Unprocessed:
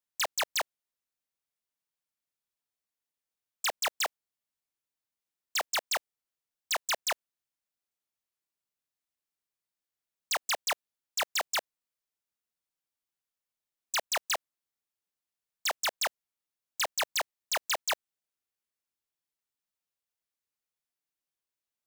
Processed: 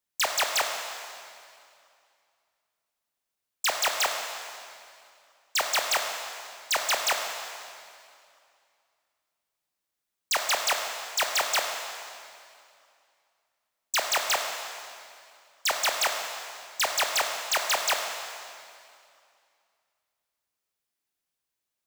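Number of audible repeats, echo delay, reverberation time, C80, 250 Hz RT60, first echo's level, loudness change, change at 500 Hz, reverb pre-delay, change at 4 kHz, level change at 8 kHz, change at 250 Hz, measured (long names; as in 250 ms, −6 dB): no echo audible, no echo audible, 2.4 s, 5.0 dB, 2.5 s, no echo audible, +4.5 dB, +6.0 dB, 6 ms, +5.5 dB, +5.5 dB, +5.5 dB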